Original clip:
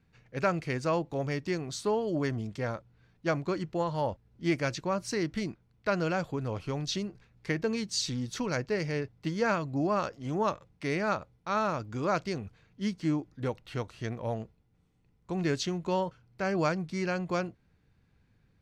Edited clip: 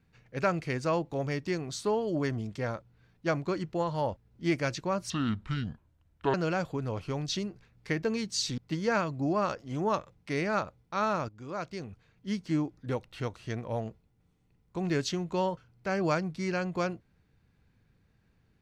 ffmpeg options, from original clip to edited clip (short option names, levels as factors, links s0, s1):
-filter_complex "[0:a]asplit=5[s0][s1][s2][s3][s4];[s0]atrim=end=5.104[s5];[s1]atrim=start=5.1:end=5.93,asetpts=PTS-STARTPTS,asetrate=29547,aresample=44100,atrim=end_sample=54631,asetpts=PTS-STARTPTS[s6];[s2]atrim=start=5.926:end=8.172[s7];[s3]atrim=start=9.118:end=11.83,asetpts=PTS-STARTPTS,afade=t=out:st=2.708:d=0.004:c=hsin:silence=0.237137[s8];[s4]atrim=start=11.83,asetpts=PTS-STARTPTS,afade=t=in:d=1.23:silence=0.237137[s9];[s5][s6]acrossfade=d=0.004:c1=hsin:c2=hsin[s10];[s10][s7]acrossfade=d=0.004:c1=hsin:c2=hsin[s11];[s8][s9]concat=n=2:v=0:a=1[s12];[s11][s12]acrossfade=d=0.004:c1=hsin:c2=hsin"